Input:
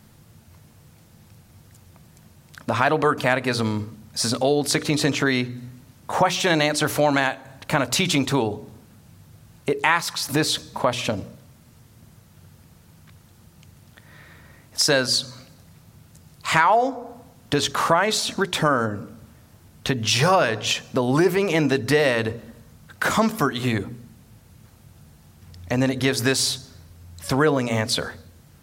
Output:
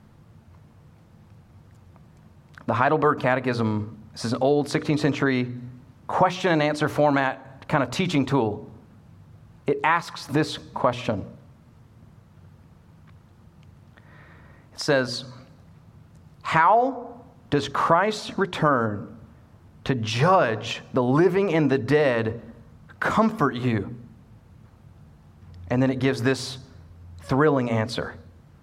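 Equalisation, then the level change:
low-pass filter 1,400 Hz 6 dB per octave
parametric band 1,100 Hz +3 dB 0.59 octaves
0.0 dB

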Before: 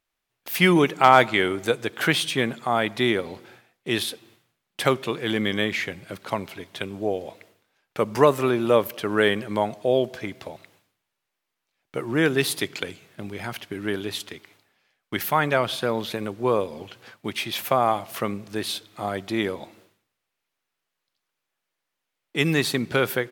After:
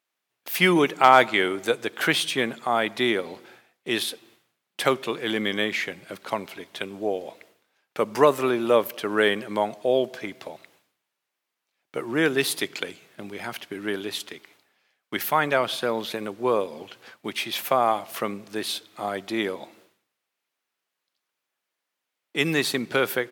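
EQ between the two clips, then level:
Bessel high-pass filter 230 Hz, order 2
0.0 dB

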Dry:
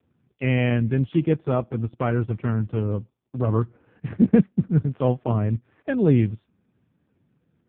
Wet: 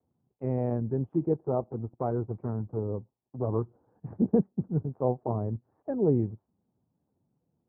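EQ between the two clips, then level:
dynamic equaliser 400 Hz, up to +6 dB, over −36 dBFS, Q 2.4
transistor ladder low-pass 1,000 Hz, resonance 50%
high-frequency loss of the air 210 metres
0.0 dB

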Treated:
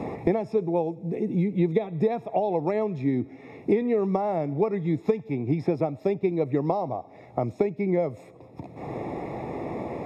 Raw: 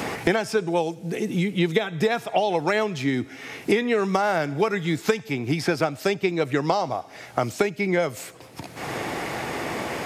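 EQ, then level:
moving average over 29 samples
0.0 dB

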